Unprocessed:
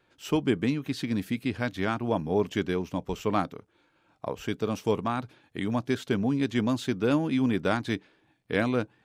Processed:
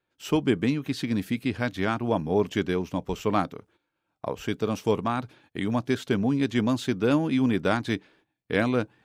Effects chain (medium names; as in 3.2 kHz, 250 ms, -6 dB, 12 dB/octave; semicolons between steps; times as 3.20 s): gate -59 dBFS, range -15 dB; trim +2 dB